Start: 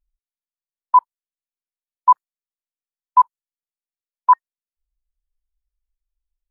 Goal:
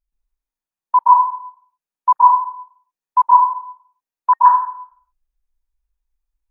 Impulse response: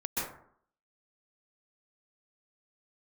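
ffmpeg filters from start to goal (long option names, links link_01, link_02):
-filter_complex "[0:a]equalizer=frequency=900:width=1.8:gain=3[link_01];[1:a]atrim=start_sample=2205[link_02];[link_01][link_02]afir=irnorm=-1:irlink=0,volume=-1.5dB"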